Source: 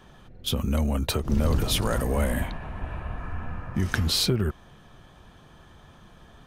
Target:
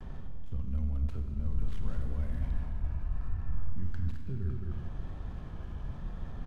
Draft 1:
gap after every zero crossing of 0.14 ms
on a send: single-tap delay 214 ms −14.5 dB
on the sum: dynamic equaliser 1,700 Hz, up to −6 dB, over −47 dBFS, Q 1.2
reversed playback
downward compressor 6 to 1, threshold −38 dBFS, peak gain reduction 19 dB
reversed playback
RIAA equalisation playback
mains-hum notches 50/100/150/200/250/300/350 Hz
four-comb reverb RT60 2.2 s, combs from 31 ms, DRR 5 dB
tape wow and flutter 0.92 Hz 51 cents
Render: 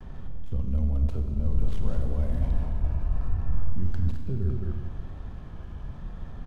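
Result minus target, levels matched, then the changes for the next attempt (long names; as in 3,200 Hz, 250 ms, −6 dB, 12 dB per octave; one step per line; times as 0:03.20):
downward compressor: peak gain reduction −7 dB; 500 Hz band +2.5 dB
change: dynamic equaliser 540 Hz, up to −6 dB, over −47 dBFS, Q 1.2
change: downward compressor 6 to 1, threshold −46.5 dBFS, peak gain reduction 25.5 dB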